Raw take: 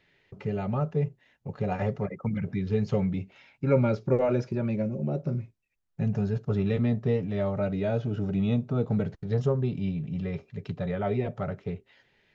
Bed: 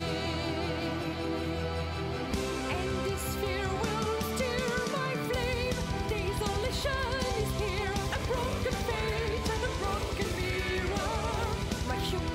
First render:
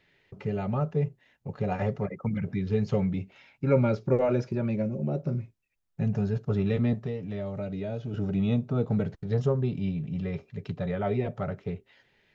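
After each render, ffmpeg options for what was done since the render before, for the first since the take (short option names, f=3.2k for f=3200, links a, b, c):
-filter_complex "[0:a]asettb=1/sr,asplit=3[a][b][c];[a]atrim=end=6.934[d];[b]atrim=start=6.93:end=8.14,asetpts=PTS-STARTPTS,afade=t=in:d=0.004:c=qsin,afade=t=out:st=1.206:d=0.004:c=qsin,acrossover=split=700|2200[e][f][g];[e]acompressor=threshold=-31dB:ratio=4[h];[f]acompressor=threshold=-50dB:ratio=4[i];[g]acompressor=threshold=-55dB:ratio=4[j];[h][i][j]amix=inputs=3:normalize=0[k];[c]atrim=start=8.136[l];[d][k]acrossfade=d=0.004:c1=hsin:c2=qsin[m];[m][l]acrossfade=d=0.004:c1=qsin:c2=hsin"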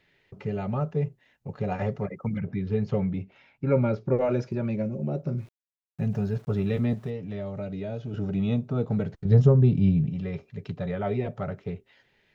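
-filter_complex "[0:a]asettb=1/sr,asplit=3[a][b][c];[a]atrim=end=2.394[d];[b]atrim=start=2.39:end=4.21,asetpts=PTS-STARTPTS,afade=t=in:d=0.004:c=qsin,afade=t=out:st=1.816:d=0.004:c=qsin,lowpass=f=2.6k:p=1[e];[c]atrim=start=4.206[f];[d][e]acrossfade=d=0.004:c1=hsin:c2=qsin[g];[g][f]acrossfade=d=0.004:c1=qsin:c2=hsin,asplit=3[h][i][j];[h]afade=t=out:st=5.37:d=0.02[k];[i]aeval=exprs='val(0)*gte(abs(val(0)),0.00266)':c=same,afade=t=in:st=5.37:d=0.02,afade=t=out:st=7.09:d=0.02[l];[j]afade=t=in:st=7.09:d=0.02[m];[k][l][m]amix=inputs=3:normalize=0,asettb=1/sr,asplit=3[n][o][p];[n]atrim=end=9.254[q];[o]atrim=start=9.25:end=10.1,asetpts=PTS-STARTPTS,afade=t=in:d=0.004:c=qsin,afade=t=out:st=0.846:d=0.004:c=qsin,lowshelf=f=300:g=12[r];[p]atrim=start=10.096[s];[q][r]acrossfade=d=0.004:c1=hsin:c2=qsin[t];[t][s]acrossfade=d=0.004:c1=qsin:c2=hsin"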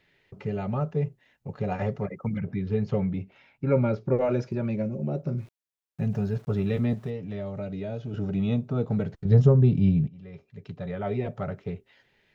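-filter_complex "[0:a]asplit=2[a][b];[a]atrim=end=10.08,asetpts=PTS-STARTPTS,afade=t=out:st=10.076:d=0.004:c=hsin:silence=0.11885[c];[b]atrim=start=10.08,asetpts=PTS-STARTPTS,afade=t=in:d=1.22:silence=0.11885[d];[c][d]concat=n=2:v=0:a=1"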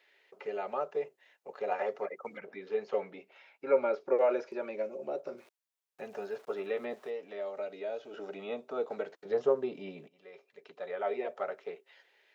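-filter_complex "[0:a]acrossover=split=2800[a][b];[b]acompressor=threshold=-59dB:ratio=4:attack=1:release=60[c];[a][c]amix=inputs=2:normalize=0,highpass=f=420:w=0.5412,highpass=f=420:w=1.3066"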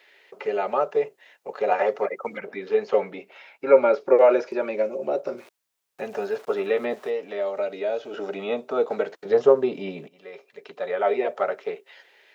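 -af "volume=11dB"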